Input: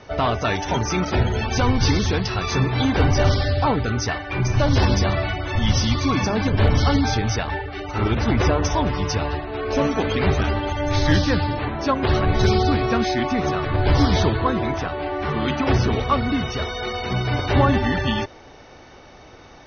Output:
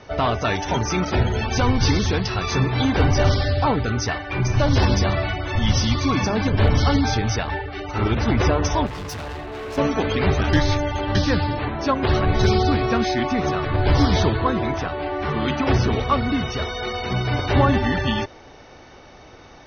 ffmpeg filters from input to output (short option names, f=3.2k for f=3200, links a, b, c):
-filter_complex "[0:a]asettb=1/sr,asplit=3[a][b][c];[a]atrim=end=8.864[d];[b]atrim=start=8.86:end=9.78,asetpts=PTS-STARTPTS,afade=t=in:d=0.004:c=qsin,afade=t=out:st=0.916:d=0.004:c=qsin,volume=29.5dB,asoftclip=hard,volume=-29.5dB[e];[c]atrim=start=9.776[f];[d][e]acrossfade=d=0.004:c1=hsin:c2=qsin[g];[g][f]acrossfade=d=0.004:c1=qsin:c2=hsin,asplit=3[h][i][j];[h]atrim=end=10.532[k];[i]atrim=start=10.528:end=11.152,asetpts=PTS-STARTPTS,areverse[l];[j]atrim=start=11.148[m];[k][l]acrossfade=d=0.004:c1=hsin:c2=hsin[n];[n][m]acrossfade=d=0.004:c1=hsin:c2=hsin"